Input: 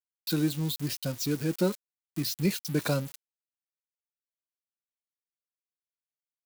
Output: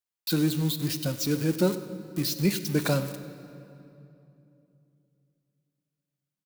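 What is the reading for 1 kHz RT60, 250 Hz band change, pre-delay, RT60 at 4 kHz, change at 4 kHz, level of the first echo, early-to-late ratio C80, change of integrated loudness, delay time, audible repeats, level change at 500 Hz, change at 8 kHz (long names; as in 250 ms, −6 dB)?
2.7 s, +3.0 dB, 22 ms, 1.9 s, +3.0 dB, −18.0 dB, 12.0 dB, +2.5 dB, 98 ms, 1, +3.0 dB, +2.5 dB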